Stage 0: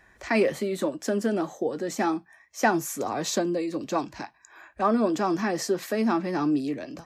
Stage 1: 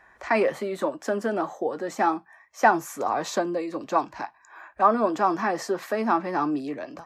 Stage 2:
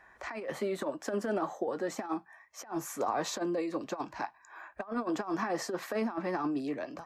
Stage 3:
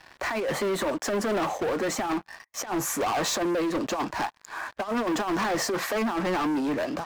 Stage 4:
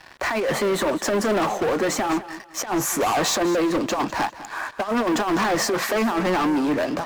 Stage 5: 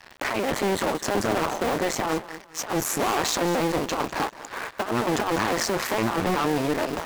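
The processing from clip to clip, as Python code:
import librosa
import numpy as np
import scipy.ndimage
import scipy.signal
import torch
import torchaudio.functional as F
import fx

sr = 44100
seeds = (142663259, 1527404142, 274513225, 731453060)

y1 = fx.peak_eq(x, sr, hz=1000.0, db=13.5, octaves=2.2)
y1 = F.gain(torch.from_numpy(y1), -6.5).numpy()
y2 = fx.over_compress(y1, sr, threshold_db=-26.0, ratio=-0.5)
y2 = F.gain(torch.from_numpy(y2), -6.0).numpy()
y3 = fx.leveller(y2, sr, passes=5)
y3 = F.gain(torch.from_numpy(y3), -4.5).numpy()
y4 = fx.echo_feedback(y3, sr, ms=202, feedback_pct=29, wet_db=-15.0)
y4 = F.gain(torch.from_numpy(y4), 5.0).numpy()
y5 = fx.cycle_switch(y4, sr, every=2, mode='muted')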